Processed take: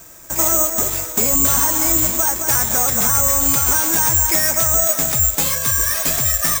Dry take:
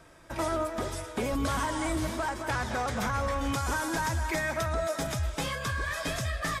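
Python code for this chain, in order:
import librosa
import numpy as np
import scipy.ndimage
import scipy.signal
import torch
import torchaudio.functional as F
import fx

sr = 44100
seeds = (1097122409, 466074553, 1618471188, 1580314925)

y = (np.kron(x[::6], np.eye(6)[0]) * 6)[:len(x)]
y = F.gain(torch.from_numpy(y), 6.0).numpy()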